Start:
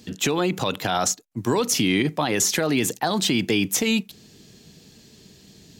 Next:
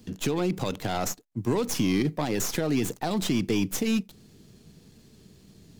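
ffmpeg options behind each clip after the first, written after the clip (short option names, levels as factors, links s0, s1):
-filter_complex "[0:a]lowshelf=f=140:g=6.5,acrossover=split=790[s0][s1];[s1]aeval=exprs='max(val(0),0)':c=same[s2];[s0][s2]amix=inputs=2:normalize=0,volume=0.596"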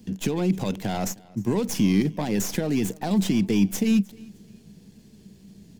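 -af "equalizer=f=200:t=o:w=0.33:g=10,equalizer=f=1250:t=o:w=0.33:g=-7,equalizer=f=4000:t=o:w=0.33:g=-3,aecho=1:1:309|618:0.0631|0.0202"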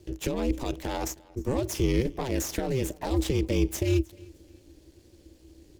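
-af "highpass=150,aeval=exprs='val(0)*sin(2*PI*130*n/s)':c=same"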